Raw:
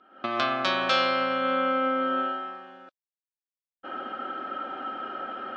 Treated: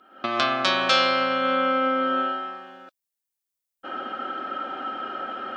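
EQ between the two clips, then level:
high-shelf EQ 5,700 Hz +11.5 dB
+2.5 dB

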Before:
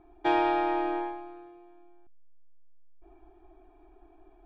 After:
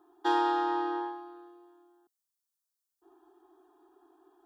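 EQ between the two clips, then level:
high-pass filter 340 Hz 12 dB per octave
high-shelf EQ 2,200 Hz +11 dB
phaser with its sweep stopped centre 620 Hz, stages 6
0.0 dB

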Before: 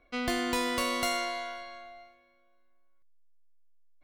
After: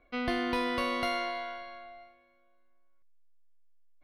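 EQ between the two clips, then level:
moving average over 6 samples
0.0 dB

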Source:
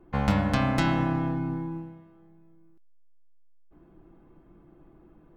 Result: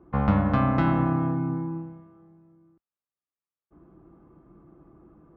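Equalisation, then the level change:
high-pass filter 51 Hz
head-to-tape spacing loss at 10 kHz 42 dB
parametric band 1,200 Hz +9 dB 0.3 octaves
+3.5 dB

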